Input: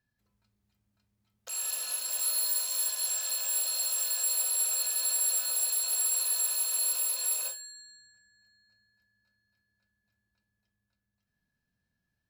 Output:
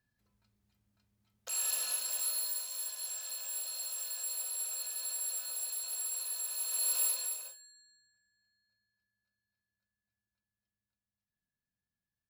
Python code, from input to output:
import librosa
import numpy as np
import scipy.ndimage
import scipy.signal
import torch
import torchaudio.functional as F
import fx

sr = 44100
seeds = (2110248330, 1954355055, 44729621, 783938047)

y = fx.gain(x, sr, db=fx.line((1.82, 0.0), (2.7, -9.0), (6.47, -9.0), (7.05, 0.0), (7.46, -12.5)))